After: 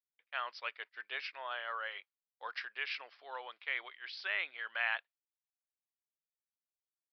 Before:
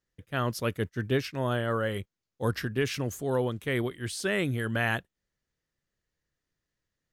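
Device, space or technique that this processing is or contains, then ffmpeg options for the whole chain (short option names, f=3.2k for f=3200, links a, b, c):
musical greeting card: -af "agate=range=-33dB:threshold=-42dB:ratio=3:detection=peak,aresample=11025,aresample=44100,highpass=f=790:w=0.5412,highpass=f=790:w=1.3066,equalizer=f=2.3k:t=o:w=0.43:g=6.5,volume=-6dB"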